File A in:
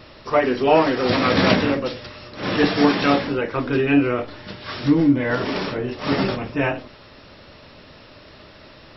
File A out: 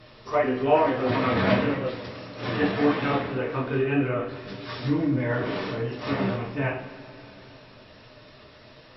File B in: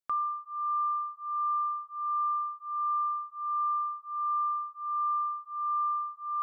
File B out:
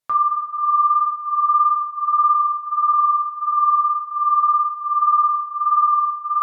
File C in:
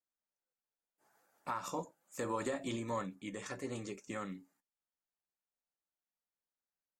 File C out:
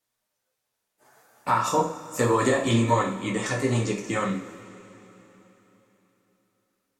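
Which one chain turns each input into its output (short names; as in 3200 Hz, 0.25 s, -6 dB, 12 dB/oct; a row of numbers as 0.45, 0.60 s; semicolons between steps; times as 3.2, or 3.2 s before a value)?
flange 1.7 Hz, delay 6.1 ms, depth 4.5 ms, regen -30%; treble ducked by the level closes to 2700 Hz, closed at -21.5 dBFS; two-slope reverb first 0.4 s, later 3.8 s, from -18 dB, DRR 0.5 dB; normalise peaks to -9 dBFS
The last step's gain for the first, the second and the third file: -4.0, +12.0, +17.0 dB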